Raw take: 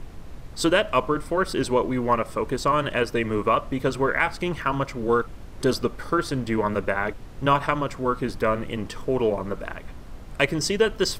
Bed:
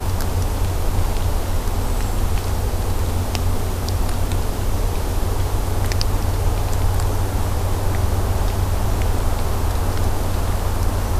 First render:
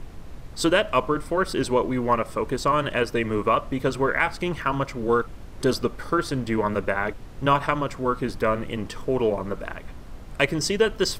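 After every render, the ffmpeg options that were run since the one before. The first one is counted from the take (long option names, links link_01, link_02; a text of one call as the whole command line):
ffmpeg -i in.wav -af anull out.wav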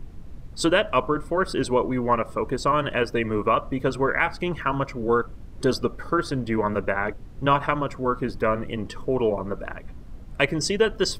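ffmpeg -i in.wav -af "afftdn=noise_reduction=9:noise_floor=-40" out.wav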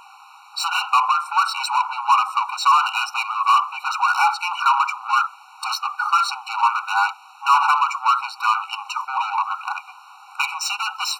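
ffmpeg -i in.wav -filter_complex "[0:a]asplit=2[link_01][link_02];[link_02]highpass=frequency=720:poles=1,volume=29dB,asoftclip=type=tanh:threshold=-5.5dB[link_03];[link_01][link_03]amix=inputs=2:normalize=0,lowpass=frequency=2700:poles=1,volume=-6dB,afftfilt=real='re*eq(mod(floor(b*sr/1024/750),2),1)':imag='im*eq(mod(floor(b*sr/1024/750),2),1)':win_size=1024:overlap=0.75" out.wav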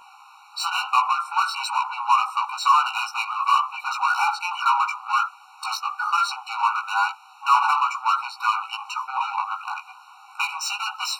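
ffmpeg -i in.wav -af "flanger=delay=15.5:depth=2.6:speed=1.1" out.wav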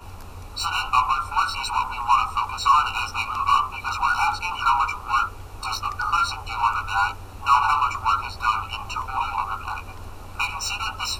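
ffmpeg -i in.wav -i bed.wav -filter_complex "[1:a]volume=-19dB[link_01];[0:a][link_01]amix=inputs=2:normalize=0" out.wav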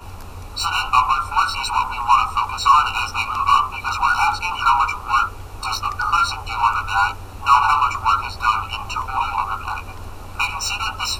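ffmpeg -i in.wav -af "volume=4dB" out.wav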